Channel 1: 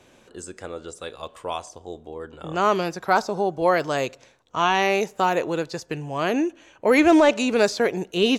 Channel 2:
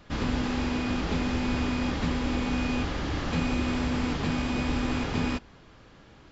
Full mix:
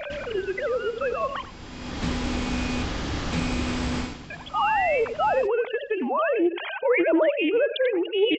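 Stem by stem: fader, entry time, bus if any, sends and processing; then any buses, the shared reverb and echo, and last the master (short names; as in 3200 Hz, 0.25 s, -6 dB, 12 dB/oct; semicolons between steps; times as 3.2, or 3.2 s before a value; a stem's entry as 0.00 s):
-8.0 dB, 0.00 s, muted 1.44–4.3, no send, echo send -13.5 dB, sine-wave speech; reverb removal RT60 0.53 s; fast leveller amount 70%
+1.0 dB, 0.00 s, no send, echo send -16.5 dB, high shelf 6100 Hz +11 dB; auto duck -22 dB, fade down 0.30 s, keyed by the first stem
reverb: off
echo: echo 91 ms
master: short-mantissa float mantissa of 8-bit; Doppler distortion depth 0.16 ms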